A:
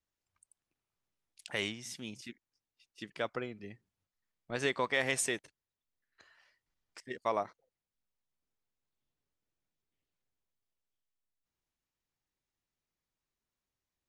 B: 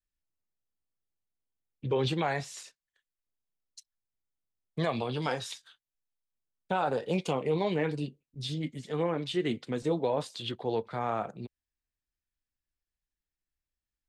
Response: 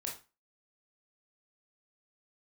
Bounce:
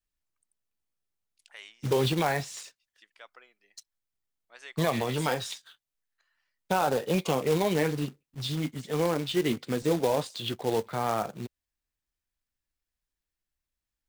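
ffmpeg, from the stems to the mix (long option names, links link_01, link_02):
-filter_complex "[0:a]highpass=850,volume=-10.5dB[link_01];[1:a]acrusher=bits=3:mode=log:mix=0:aa=0.000001,volume=3dB[link_02];[link_01][link_02]amix=inputs=2:normalize=0"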